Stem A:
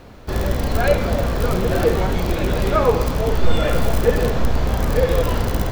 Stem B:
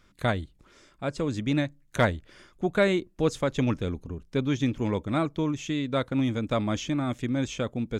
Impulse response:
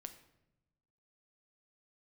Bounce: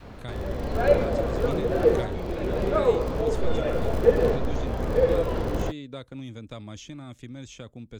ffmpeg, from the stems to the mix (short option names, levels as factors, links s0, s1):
-filter_complex "[0:a]highshelf=f=6000:g=-10.5,volume=0.944[s0];[1:a]acrossover=split=120|3000[s1][s2][s3];[s2]acompressor=threshold=0.0141:ratio=2.5[s4];[s1][s4][s3]amix=inputs=3:normalize=0,volume=0.473,asplit=2[s5][s6];[s6]apad=whole_len=252234[s7];[s0][s7]sidechaincompress=threshold=0.00794:ratio=6:attack=5.7:release=1500[s8];[s8][s5]amix=inputs=2:normalize=0,adynamicequalizer=threshold=0.00891:dfrequency=440:dqfactor=0.97:tfrequency=440:tqfactor=0.97:attack=5:release=100:ratio=0.375:range=4:mode=boostabove:tftype=bell"